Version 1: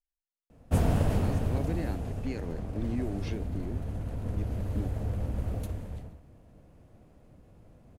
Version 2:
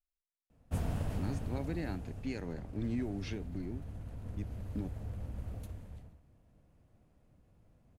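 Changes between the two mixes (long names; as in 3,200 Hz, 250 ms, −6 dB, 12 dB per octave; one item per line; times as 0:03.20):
background −9.0 dB
master: add parametric band 440 Hz −4 dB 1.8 octaves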